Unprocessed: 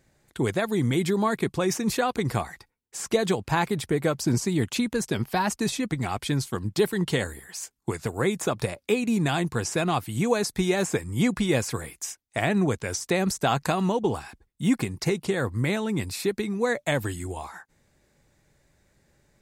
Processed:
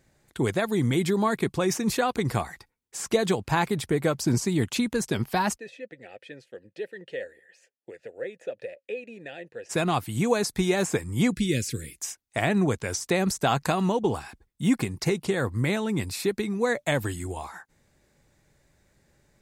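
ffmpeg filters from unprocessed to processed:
-filter_complex "[0:a]asplit=3[s0][s1][s2];[s0]afade=t=out:st=5.57:d=0.02[s3];[s1]asplit=3[s4][s5][s6];[s4]bandpass=f=530:t=q:w=8,volume=1[s7];[s5]bandpass=f=1840:t=q:w=8,volume=0.501[s8];[s6]bandpass=f=2480:t=q:w=8,volume=0.355[s9];[s7][s8][s9]amix=inputs=3:normalize=0,afade=t=in:st=5.57:d=0.02,afade=t=out:st=9.69:d=0.02[s10];[s2]afade=t=in:st=9.69:d=0.02[s11];[s3][s10][s11]amix=inputs=3:normalize=0,asettb=1/sr,asplit=3[s12][s13][s14];[s12]atrim=end=11.324[s15];[s13]atrim=start=11.32:end=11.97,asetpts=PTS-STARTPTS,afade=t=in:d=0.004:c=qsin,afade=t=out:st=0.646:d=0.004:c=qsin,asuperstop=centerf=910:order=4:qfactor=0.51[s16];[s14]atrim=start=11.966[s17];[s15][s16]acrossfade=d=0.004:c1=hsin:c2=qsin[s18];[s18][s17]acrossfade=d=0.004:c1=qsin:c2=hsin"

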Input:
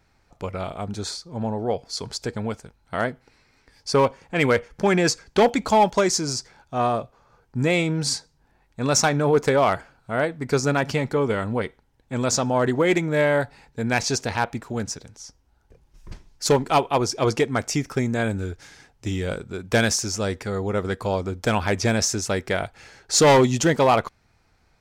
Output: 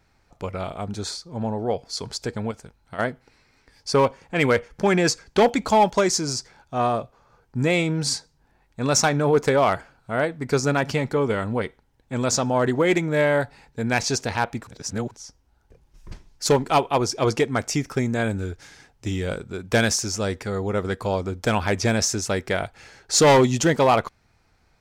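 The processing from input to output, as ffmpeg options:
-filter_complex "[0:a]asettb=1/sr,asplit=3[s0][s1][s2];[s0]atrim=end=2.514[s3];[s1]atrim=start=2.51:end=2.99,asetpts=PTS-STARTPTS,afade=t=in:d=0.004:c=qsin,afade=t=out:st=0.476:d=0.004:c=qsin,acompressor=threshold=0.0178:ratio=2.5:attack=3.2:release=140:knee=1:detection=peak[s4];[s2]atrim=start=2.986[s5];[s3][s4]acrossfade=d=0.004:c1=hsin:c2=qsin[s6];[s6][s5]acrossfade=d=0.004:c1=qsin:c2=hsin,asplit=3[s7][s8][s9];[s7]atrim=end=14.672[s10];[s8]atrim=start=14.668:end=15.112,asetpts=PTS-STARTPTS,areverse[s11];[s9]atrim=start=15.108[s12];[s10][s11]acrossfade=d=0.004:c1=hsin:c2=hsin[s13];[s13][s12]acrossfade=d=0.004:c1=hsin:c2=hsin"

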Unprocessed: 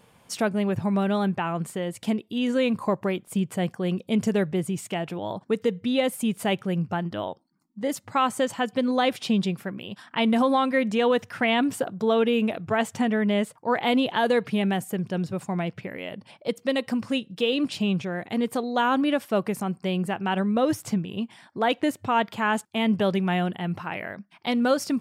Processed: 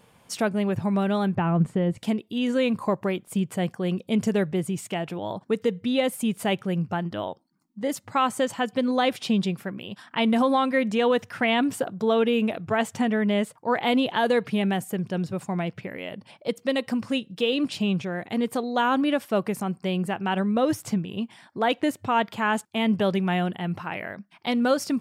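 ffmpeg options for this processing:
-filter_complex "[0:a]asettb=1/sr,asplit=3[s0][s1][s2];[s0]atrim=end=1.354[s3];[s1]atrim=start=1.35:end=1.98,asetpts=PTS-STARTPTS,afade=t=in:d=0.004:c=qsin,afade=t=out:st=0.626:d=0.004:c=qsin,aemphasis=mode=reproduction:type=riaa[s4];[s2]atrim=start=1.976[s5];[s3][s4]acrossfade=d=0.004:c1=hsin:c2=qsin[s6];[s6][s5]acrossfade=d=0.004:c1=qsin:c2=hsin"

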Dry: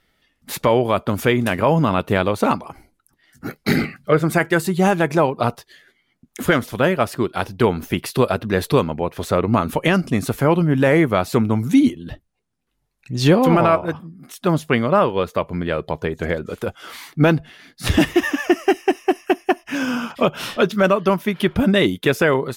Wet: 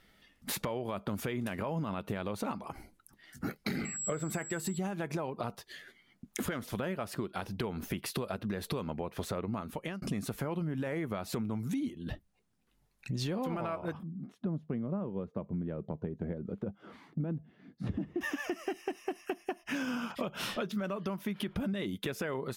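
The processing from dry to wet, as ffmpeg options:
-filter_complex "[0:a]asettb=1/sr,asplit=3[s0][s1][s2];[s0]atrim=end=3.854[s3];[s1]atrim=start=3.85:end=4.78,asetpts=PTS-STARTPTS,afade=t=in:d=0.004:c=qsin,afade=t=out:st=0.926:d=0.004:c=qsin,aeval=exprs='val(0)+0.0355*sin(2*PI*7700*n/s)':c=same[s4];[s2]atrim=start=4.776[s5];[s3][s4]acrossfade=d=0.004:c1=hsin:c2=qsin[s6];[s6][s5]acrossfade=d=0.004:c1=qsin:c2=hsin,asettb=1/sr,asplit=3[s7][s8][s9];[s7]atrim=end=14.034[s10];[s8]atrim=start=14.03:end=18.21,asetpts=PTS-STARTPTS,afade=t=in:d=0.004:c=qsin,afade=t=out:st=4.176:d=0.004:c=qsin,bandpass=f=180:t=q:w=0.97[s11];[s9]atrim=start=18.206[s12];[s10][s11]acrossfade=d=0.004:c1=hsin:c2=qsin[s13];[s13][s12]acrossfade=d=0.004:c1=qsin:c2=hsin,asplit=2[s14][s15];[s14]atrim=end=10.02,asetpts=PTS-STARTPTS,afade=t=out:st=9.22:d=0.8[s16];[s15]atrim=start=10.02,asetpts=PTS-STARTPTS,afade=t=in:d=0.004:c=hsin[s17];[s16][s17]concat=n=2:v=0:a=1,equalizer=f=200:w=7.7:g=6.5,alimiter=limit=0.266:level=0:latency=1:release=99,acompressor=threshold=0.02:ratio=5"

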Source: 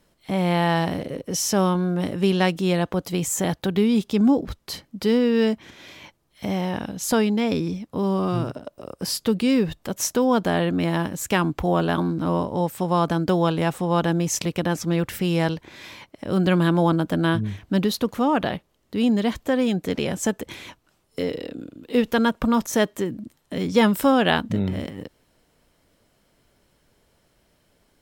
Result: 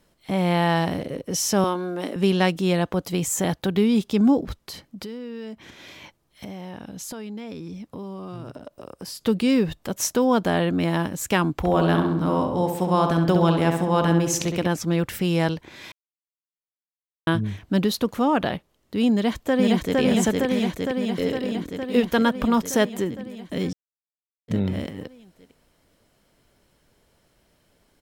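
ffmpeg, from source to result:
-filter_complex "[0:a]asettb=1/sr,asplit=3[s0][s1][s2];[s0]atrim=end=1.644[s3];[s1]atrim=start=1.64:end=2.16,asetpts=PTS-STARTPTS,afade=t=in:d=0.004:c=qsin,afade=t=out:st=0.516:d=0.004:c=qsin,highpass=f=250:w=0.5412,highpass=f=250:w=1.3066[s4];[s2]atrim=start=2.156[s5];[s3][s4]acrossfade=d=0.004:c1=hsin:c2=qsin[s6];[s6][s5]acrossfade=d=0.004:c1=qsin:c2=hsin,asettb=1/sr,asplit=3[s7][s8][s9];[s7]atrim=end=4.564[s10];[s8]atrim=start=4.56:end=9.21,asetpts=PTS-STARTPTS,afade=t=in:d=0.004:c=qsin,afade=t=out:st=4.646:d=0.004:c=qsin,acompressor=threshold=0.0224:ratio=5:attack=3.2:release=140:knee=1:detection=peak[s11];[s9]atrim=start=9.206[s12];[s10][s11]acrossfade=d=0.004:c1=hsin:c2=qsin[s13];[s13][s12]acrossfade=d=0.004:c1=qsin:c2=hsin,asettb=1/sr,asplit=3[s14][s15][s16];[s14]atrim=end=11.554[s17];[s15]atrim=start=11.55:end=14.67,asetpts=PTS-STARTPTS,afade=t=in:d=0.004:c=qsin,afade=t=out:st=3.116:d=0.004:c=qsin,asplit=2[s18][s19];[s19]adelay=66,lowpass=f=3400:p=1,volume=0.562,asplit=2[s20][s21];[s21]adelay=66,lowpass=f=3400:p=1,volume=0.55,asplit=2[s22][s23];[s23]adelay=66,lowpass=f=3400:p=1,volume=0.55,asplit=2[s24][s25];[s25]adelay=66,lowpass=f=3400:p=1,volume=0.55,asplit=2[s26][s27];[s27]adelay=66,lowpass=f=3400:p=1,volume=0.55,asplit=2[s28][s29];[s29]adelay=66,lowpass=f=3400:p=1,volume=0.55,asplit=2[s30][s31];[s31]adelay=66,lowpass=f=3400:p=1,volume=0.55[s32];[s18][s20][s22][s24][s26][s28][s30][s32]amix=inputs=8:normalize=0,atrim=end_sample=137592[s33];[s16]atrim=start=14.666[s34];[s17][s33]acrossfade=d=0.004:c1=hsin:c2=qsin[s35];[s35][s34]acrossfade=d=0.004:c1=qsin:c2=hsin,asplit=2[s36][s37];[s37]afade=t=in:st=19.13:d=0.01,afade=t=out:st=19.99:d=0.01,aecho=0:1:460|920|1380|1840|2300|2760|3220|3680|4140|4600|5060|5520:0.944061|0.708046|0.531034|0.398276|0.298707|0.22403|0.168023|0.126017|0.0945127|0.0708845|0.0531634|0.0398725[s38];[s36][s38]amix=inputs=2:normalize=0,asplit=5[s39][s40][s41][s42][s43];[s39]atrim=end=15.92,asetpts=PTS-STARTPTS,afade=t=out:st=15.916:d=0.004:c=hsin[s44];[s40]atrim=start=15.92:end=17.27,asetpts=PTS-STARTPTS,volume=0[s45];[s41]atrim=start=17.27:end=23.73,asetpts=PTS-STARTPTS,afade=t=in:d=0.004:c=hsin,afade=t=out:st=6.456:d=0.004:c=hsin[s46];[s42]atrim=start=23.73:end=24.48,asetpts=PTS-STARTPTS,volume=0[s47];[s43]atrim=start=24.48,asetpts=PTS-STARTPTS,afade=t=in:d=0.004:c=hsin[s48];[s44][s45][s46][s47][s48]concat=n=5:v=0:a=1"

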